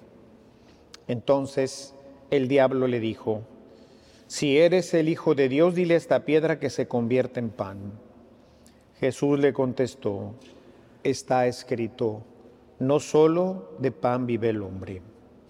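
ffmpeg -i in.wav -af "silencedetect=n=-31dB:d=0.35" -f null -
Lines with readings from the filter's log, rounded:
silence_start: 0.00
silence_end: 0.94 | silence_duration: 0.94
silence_start: 1.84
silence_end: 2.32 | silence_duration: 0.48
silence_start: 3.39
silence_end: 4.31 | silence_duration: 0.92
silence_start: 7.89
silence_end: 9.02 | silence_duration: 1.13
silence_start: 10.29
silence_end: 11.05 | silence_duration: 0.76
silence_start: 12.18
silence_end: 12.81 | silence_duration: 0.63
silence_start: 14.97
silence_end: 15.49 | silence_duration: 0.52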